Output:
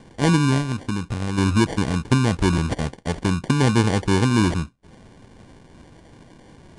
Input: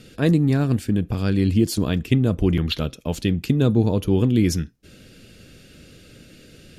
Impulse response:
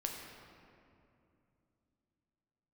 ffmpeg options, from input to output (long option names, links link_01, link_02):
-filter_complex "[0:a]asettb=1/sr,asplit=3[link_01][link_02][link_03];[link_01]atrim=end=0.594[link_04];[link_02]atrim=start=0.59:end=1.38,asetpts=PTS-STARTPTS,afade=type=in:duration=0.004:curve=qsin,afade=type=out:start_time=0.786:duration=0.004:curve=qsin,acompressor=threshold=-21dB:ratio=6[link_05];[link_03]atrim=start=1.376[link_06];[link_04][link_05]acrossfade=duration=0.004:curve1=hsin:curve2=qsin[link_07];[link_07][link_06]acrossfade=duration=0.004:curve1=qsin:curve2=hsin,acrusher=samples=34:mix=1:aa=0.000001,aresample=22050,aresample=44100"